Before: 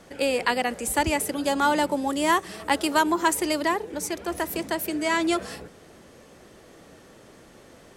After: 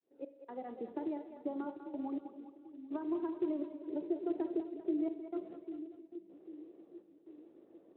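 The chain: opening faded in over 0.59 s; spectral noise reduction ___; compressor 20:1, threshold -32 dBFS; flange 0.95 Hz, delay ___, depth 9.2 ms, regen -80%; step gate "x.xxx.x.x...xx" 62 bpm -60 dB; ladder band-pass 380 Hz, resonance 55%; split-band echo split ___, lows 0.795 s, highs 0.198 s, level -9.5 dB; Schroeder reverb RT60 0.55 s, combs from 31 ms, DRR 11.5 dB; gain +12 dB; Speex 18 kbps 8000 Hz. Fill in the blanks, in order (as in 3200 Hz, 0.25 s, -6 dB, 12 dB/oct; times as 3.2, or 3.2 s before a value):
10 dB, 3.1 ms, 360 Hz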